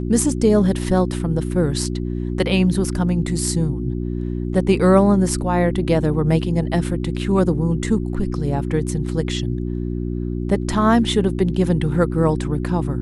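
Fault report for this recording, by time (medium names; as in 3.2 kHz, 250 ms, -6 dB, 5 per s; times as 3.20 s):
hum 60 Hz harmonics 6 -24 dBFS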